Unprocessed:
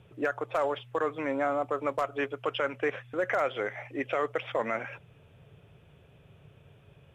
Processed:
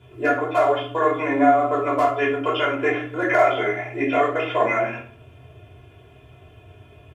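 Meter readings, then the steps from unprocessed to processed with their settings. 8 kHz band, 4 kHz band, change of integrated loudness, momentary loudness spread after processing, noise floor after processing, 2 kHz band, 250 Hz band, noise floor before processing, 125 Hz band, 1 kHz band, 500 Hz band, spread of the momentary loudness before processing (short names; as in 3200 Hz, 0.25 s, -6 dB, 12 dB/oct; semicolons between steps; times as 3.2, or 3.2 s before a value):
n/a, +9.0 dB, +10.5 dB, 6 LU, -49 dBFS, +10.0 dB, +12.0 dB, -58 dBFS, +11.5 dB, +12.5 dB, +9.5 dB, 6 LU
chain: HPF 74 Hz; comb 2.9 ms, depth 87%; shoebox room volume 510 m³, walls furnished, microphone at 5 m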